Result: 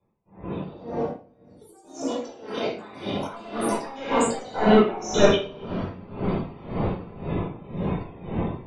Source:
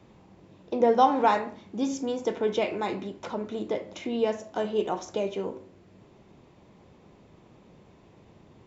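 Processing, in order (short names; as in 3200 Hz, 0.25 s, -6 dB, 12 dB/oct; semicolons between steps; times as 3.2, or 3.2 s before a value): 2.77–3.17 spectral limiter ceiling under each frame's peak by 14 dB; recorder AGC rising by 32 dB/s; gate with hold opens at -38 dBFS; reverb removal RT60 1.7 s; compressor 4:1, threshold -34 dBFS, peak gain reduction 16.5 dB; 4.41–5.35 sample leveller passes 5; loudest bins only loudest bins 64; 0.97–1.85 band-pass 5800 Hz, Q 9.5; echoes that change speed 0.225 s, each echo +4 st, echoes 2, each echo -6 dB; shoebox room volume 550 m³, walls mixed, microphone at 4.9 m; dB-linear tremolo 1.9 Hz, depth 19 dB; gain -1 dB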